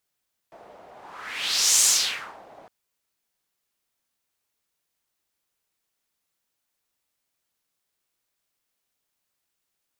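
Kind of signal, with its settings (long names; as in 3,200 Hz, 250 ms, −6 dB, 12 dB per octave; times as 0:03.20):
pass-by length 2.16 s, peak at 0:01.32, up 0.98 s, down 0.63 s, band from 670 Hz, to 7,200 Hz, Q 2.7, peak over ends 30 dB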